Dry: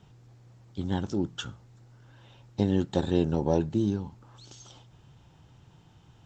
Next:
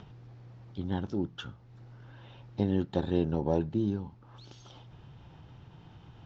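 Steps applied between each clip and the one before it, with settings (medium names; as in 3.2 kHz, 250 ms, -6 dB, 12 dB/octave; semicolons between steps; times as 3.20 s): upward compressor, threshold -39 dBFS; Bessel low-pass 3.5 kHz, order 8; trim -3 dB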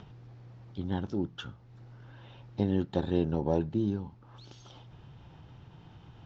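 no audible change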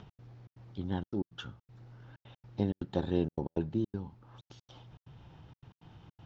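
trance gate "x.xxx.xxxxx." 160 bpm -60 dB; trim -2 dB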